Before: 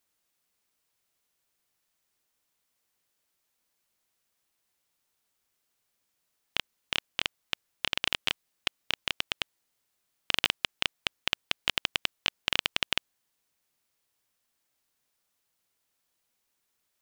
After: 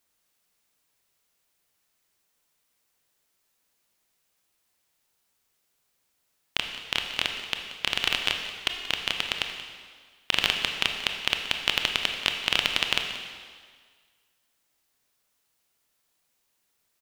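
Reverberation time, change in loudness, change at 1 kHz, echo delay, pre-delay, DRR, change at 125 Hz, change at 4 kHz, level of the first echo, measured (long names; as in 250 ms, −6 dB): 1.7 s, +4.5 dB, +4.5 dB, 181 ms, 23 ms, 3.5 dB, +4.0 dB, +4.5 dB, −15.0 dB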